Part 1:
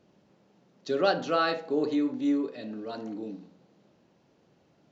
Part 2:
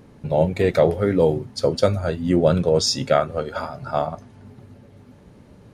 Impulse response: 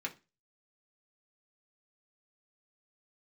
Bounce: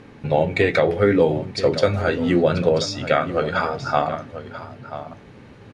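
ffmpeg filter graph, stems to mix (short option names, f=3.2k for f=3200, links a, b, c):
-filter_complex "[0:a]asoftclip=type=hard:threshold=-24dB,adelay=900,volume=-11dB,asplit=2[a][b];[b]volume=-12.5dB[c];[1:a]crystalizer=i=6.5:c=0,acompressor=threshold=-16dB:ratio=5,lowpass=2.3k,volume=2dB,asplit=4[d][e][f][g];[e]volume=-5dB[h];[f]volume=-11.5dB[i];[g]apad=whole_len=256598[j];[a][j]sidechaincompress=threshold=-21dB:ratio=3:attack=16:release=196[k];[2:a]atrim=start_sample=2205[l];[h][l]afir=irnorm=-1:irlink=0[m];[c][i]amix=inputs=2:normalize=0,aecho=0:1:986:1[n];[k][d][m][n]amix=inputs=4:normalize=0"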